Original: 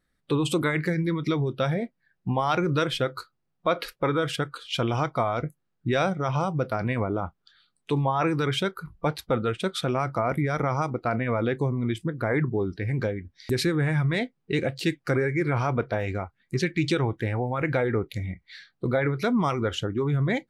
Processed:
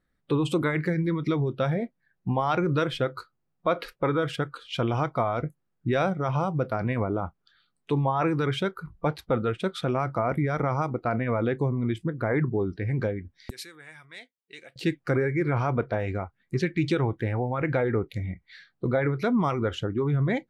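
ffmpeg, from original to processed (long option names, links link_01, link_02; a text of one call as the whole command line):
ffmpeg -i in.wav -filter_complex "[0:a]asettb=1/sr,asplit=3[link_01][link_02][link_03];[link_01]atrim=end=13.504[link_04];[link_02]atrim=start=13.5:end=14.76,asetpts=PTS-STARTPTS,afade=type=in:duration=0.004:curve=qsin,afade=type=out:start_time=1.256:duration=0.004:curve=qsin,aderivative[link_05];[link_03]atrim=start=14.756[link_06];[link_04][link_05]acrossfade=duration=0.004:curve1=hsin:curve2=qsin[link_07];[link_07][link_06]acrossfade=duration=0.004:curve1=qsin:curve2=hsin,highshelf=frequency=3200:gain=-9.5" out.wav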